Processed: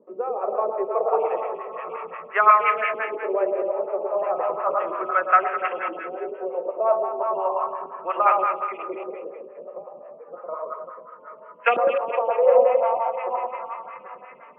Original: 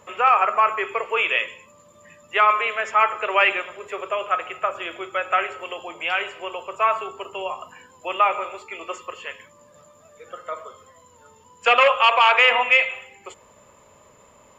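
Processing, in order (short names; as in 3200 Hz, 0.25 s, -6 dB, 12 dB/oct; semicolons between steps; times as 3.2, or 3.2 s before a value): regenerating reverse delay 0.393 s, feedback 44%, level -8 dB; 3.96–4.97 transient shaper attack -9 dB, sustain +6 dB; LFO low-pass saw up 0.34 Hz 350–2200 Hz; elliptic band-pass 170–3000 Hz; low-pass opened by the level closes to 2100 Hz, open at -14.5 dBFS; echo with dull and thin repeats by turns 0.105 s, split 910 Hz, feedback 59%, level -2.5 dB; photocell phaser 5.7 Hz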